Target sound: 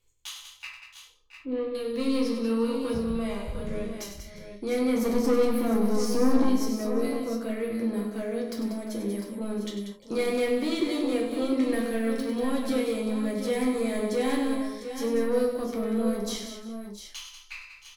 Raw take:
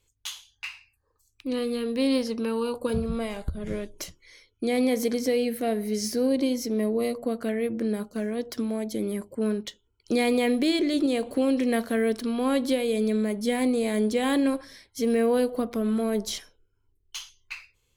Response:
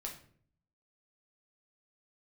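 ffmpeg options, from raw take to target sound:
-filter_complex "[0:a]asettb=1/sr,asplit=3[a][b][c];[a]atrim=end=0.674[d];[b]atrim=start=0.67:end=1.75,asetpts=PTS-STARTPTS,afade=t=in:d=0.004:c=qsin,afade=t=out:st=1.076:d=0.004:c=qsin,lowpass=1.7k[e];[c]atrim=start=1.746[f];[d][e]acrossfade=d=0.004:c1=hsin:c2=qsin[g];[g][f]acrossfade=d=0.004:c1=qsin:c2=hsin,asettb=1/sr,asplit=3[h][i][j];[h]atrim=end=4.954[k];[i]atrim=start=4.95:end=6.48,asetpts=PTS-STARTPTS,afade=t=in:d=0.004:c=qsin,afade=t=out:st=1.526:d=0.004:c=qsin,equalizer=f=270:t=o:w=2.2:g=9[l];[j]atrim=start=6.476[m];[k][l]acrossfade=d=0.004:c1=hsin:c2=qsin[n];[n][m]acrossfade=d=0.004:c1=qsin:c2=hsin,asoftclip=type=tanh:threshold=-19.5dB,aecho=1:1:97|189|350|672|702:0.376|0.355|0.1|0.158|0.335[o];[1:a]atrim=start_sample=2205,atrim=end_sample=3969[p];[o][p]afir=irnorm=-1:irlink=0"

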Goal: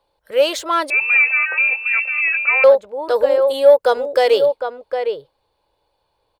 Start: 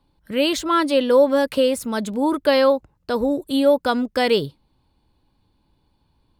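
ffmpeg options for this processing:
-filter_complex "[0:a]asplit=2[a][b];[b]adelay=758,volume=-7dB,highshelf=f=4k:g=-17.1[c];[a][c]amix=inputs=2:normalize=0,acontrast=51,asettb=1/sr,asplit=3[d][e][f];[d]atrim=end=0.904[g];[e]atrim=start=0.9:end=2.64,asetpts=PTS-STARTPTS,afade=t=in:d=0.004:c=qsin,afade=t=out:st=1.736:d=0.004:c=qsin,lowpass=f=2.5k:t=q:w=0.5098,lowpass=f=2.5k:t=q:w=0.6013,lowpass=f=2.5k:t=q:w=0.9,lowpass=f=2.5k:t=q:w=2.563,afreqshift=-2900[h];[f]atrim=start=2.636[i];[g][h]acrossfade=d=0.004:c1=hsin:c2=qsin[j];[j][i]acrossfade=d=0.004:c1=qsin:c2=hsin,lowshelf=f=350:t=q:w=3:g=-13,volume=-5dB"

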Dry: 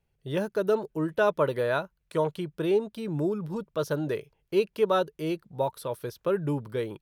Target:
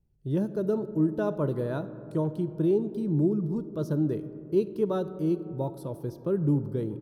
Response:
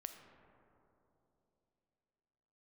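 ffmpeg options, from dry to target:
-filter_complex "[0:a]firequalizer=gain_entry='entry(320,0);entry(460,-11);entry(2300,-23);entry(4900,-14)':delay=0.05:min_phase=1,asplit=2[a][b];[1:a]atrim=start_sample=2205[c];[b][c]afir=irnorm=-1:irlink=0,volume=3.5dB[d];[a][d]amix=inputs=2:normalize=0"

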